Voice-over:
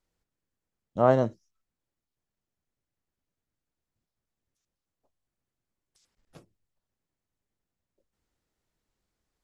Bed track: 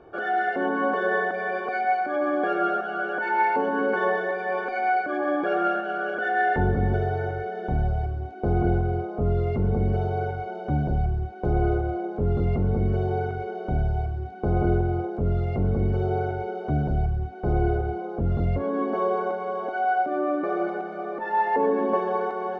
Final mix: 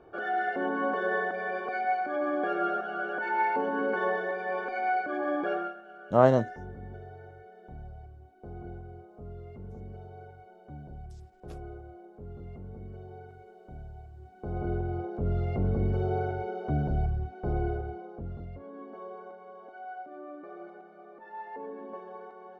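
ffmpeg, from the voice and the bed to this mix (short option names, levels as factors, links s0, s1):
-filter_complex "[0:a]adelay=5150,volume=1.12[s0];[1:a]volume=3.55,afade=t=out:st=5.5:d=0.24:silence=0.177828,afade=t=in:st=14.1:d=1.35:silence=0.158489,afade=t=out:st=17.09:d=1.39:silence=0.188365[s1];[s0][s1]amix=inputs=2:normalize=0"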